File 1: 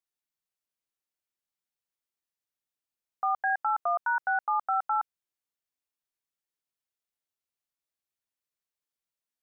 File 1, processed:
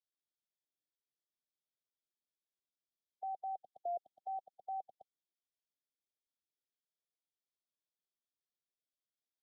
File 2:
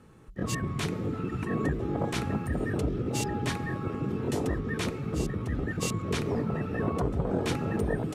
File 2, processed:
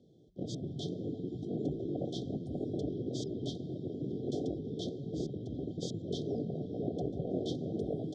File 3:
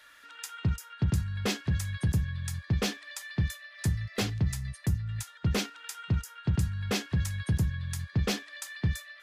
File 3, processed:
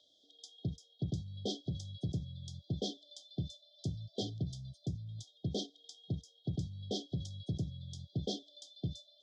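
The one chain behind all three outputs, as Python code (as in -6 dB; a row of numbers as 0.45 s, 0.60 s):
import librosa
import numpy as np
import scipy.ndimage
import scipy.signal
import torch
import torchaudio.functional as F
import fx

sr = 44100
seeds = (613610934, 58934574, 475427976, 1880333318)

y = fx.brickwall_bandstop(x, sr, low_hz=780.0, high_hz=3100.0)
y = fx.cabinet(y, sr, low_hz=160.0, low_slope=12, high_hz=5100.0, hz=(210.0, 490.0, 720.0, 4200.0), db=(-6, -4, -5, -5))
y = F.gain(torch.from_numpy(y), -2.5).numpy()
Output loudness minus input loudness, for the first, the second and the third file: -15.5 LU, -7.0 LU, -9.5 LU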